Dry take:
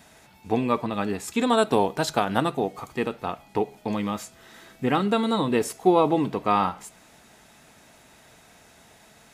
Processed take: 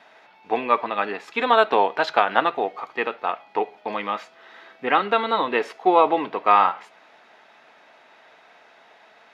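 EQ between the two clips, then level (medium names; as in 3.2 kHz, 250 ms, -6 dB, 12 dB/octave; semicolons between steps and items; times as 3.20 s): high-pass 570 Hz 12 dB/octave; dynamic bell 2.1 kHz, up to +5 dB, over -40 dBFS, Q 0.81; distance through air 290 m; +6.5 dB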